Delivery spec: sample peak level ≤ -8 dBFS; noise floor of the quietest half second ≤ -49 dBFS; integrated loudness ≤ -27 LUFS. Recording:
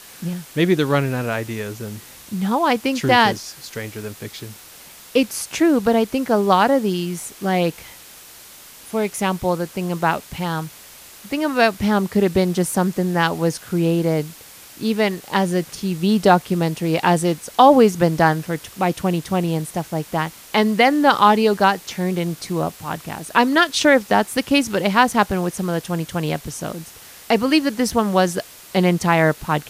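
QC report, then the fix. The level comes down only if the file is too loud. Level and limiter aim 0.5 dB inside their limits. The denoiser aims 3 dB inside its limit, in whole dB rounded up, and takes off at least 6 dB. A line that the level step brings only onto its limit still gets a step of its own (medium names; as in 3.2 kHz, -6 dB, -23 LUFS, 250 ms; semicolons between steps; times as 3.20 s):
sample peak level -2.0 dBFS: fail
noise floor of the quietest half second -43 dBFS: fail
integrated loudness -19.0 LUFS: fail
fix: trim -8.5 dB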